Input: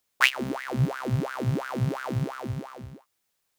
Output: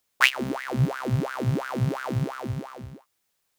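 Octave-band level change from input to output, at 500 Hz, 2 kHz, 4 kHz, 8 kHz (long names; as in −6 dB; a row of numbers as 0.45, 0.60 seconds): +1.5, +1.5, +1.5, +1.5 decibels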